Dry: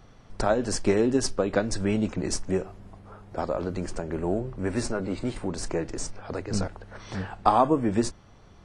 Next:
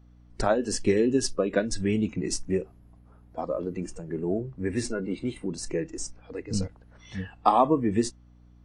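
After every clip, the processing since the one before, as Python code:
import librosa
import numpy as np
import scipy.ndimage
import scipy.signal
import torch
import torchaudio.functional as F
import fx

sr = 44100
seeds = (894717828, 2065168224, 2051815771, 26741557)

y = fx.noise_reduce_blind(x, sr, reduce_db=15)
y = fx.add_hum(y, sr, base_hz=60, snr_db=26)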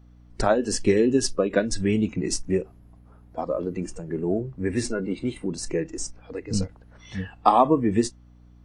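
y = fx.end_taper(x, sr, db_per_s=390.0)
y = y * 10.0 ** (3.0 / 20.0)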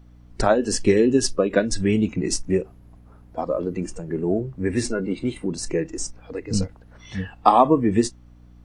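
y = fx.dmg_noise_colour(x, sr, seeds[0], colour='brown', level_db=-60.0)
y = y * 10.0 ** (2.5 / 20.0)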